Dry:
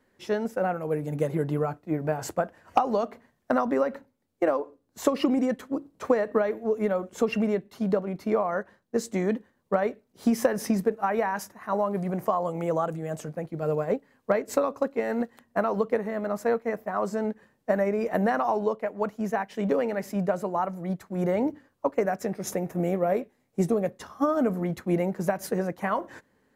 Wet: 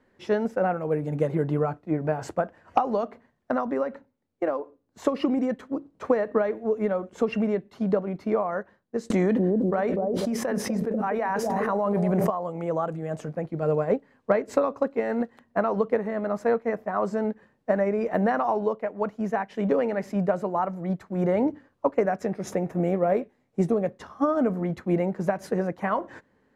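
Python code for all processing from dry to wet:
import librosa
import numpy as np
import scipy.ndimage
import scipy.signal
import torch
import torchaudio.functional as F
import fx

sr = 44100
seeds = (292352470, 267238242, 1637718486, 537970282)

y = fx.chain(x, sr, fx.high_shelf(hz=9200.0, db=7.5),
    fx.echo_bbd(ms=245, stages=1024, feedback_pct=53, wet_db=-9.0),
    fx.env_flatten(amount_pct=100), at=(9.1, 12.3))
y = scipy.signal.sosfilt(scipy.signal.bessel(2, 9200.0, 'lowpass', norm='mag', fs=sr, output='sos'), y)
y = fx.high_shelf(y, sr, hz=4200.0, db=-9.5)
y = fx.rider(y, sr, range_db=10, speed_s=2.0)
y = y * librosa.db_to_amplitude(-2.0)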